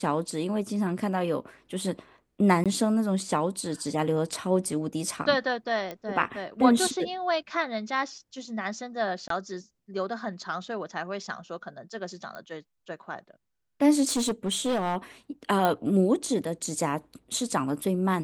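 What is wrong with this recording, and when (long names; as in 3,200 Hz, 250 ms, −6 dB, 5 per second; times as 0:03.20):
0:02.64–0:02.66: drop-out 17 ms
0:05.91: click −21 dBFS
0:09.28–0:09.30: drop-out 23 ms
0:12.35: click −27 dBFS
0:14.07–0:14.97: clipping −22.5 dBFS
0:15.65: click −12 dBFS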